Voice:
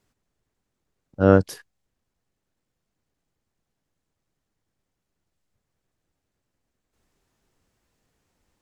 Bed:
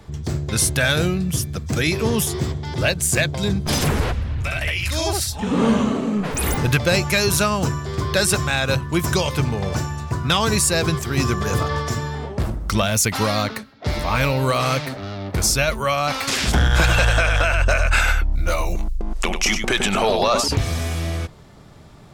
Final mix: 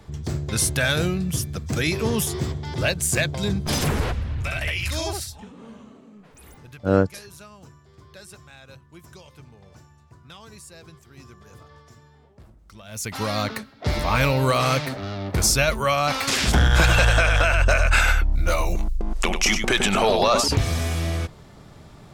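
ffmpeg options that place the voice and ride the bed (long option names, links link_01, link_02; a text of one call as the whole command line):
ffmpeg -i stem1.wav -i stem2.wav -filter_complex "[0:a]adelay=5650,volume=-3dB[link_01];[1:a]volume=22.5dB,afade=type=out:start_time=4.89:duration=0.64:silence=0.0707946,afade=type=in:start_time=12.84:duration=0.81:silence=0.0530884[link_02];[link_01][link_02]amix=inputs=2:normalize=0" out.wav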